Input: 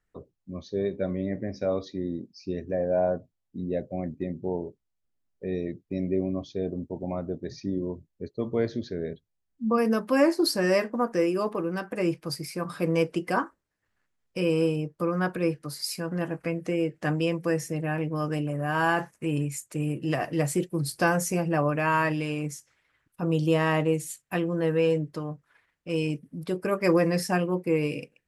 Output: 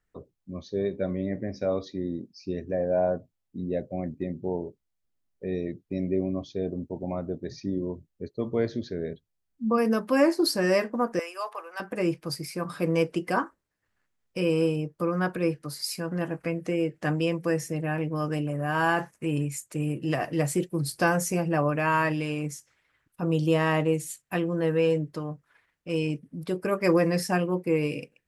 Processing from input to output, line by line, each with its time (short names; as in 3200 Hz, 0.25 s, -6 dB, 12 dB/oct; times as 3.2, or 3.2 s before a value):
11.19–11.8 HPF 700 Hz 24 dB/oct
25.98–26.39 high shelf 9500 Hz -8 dB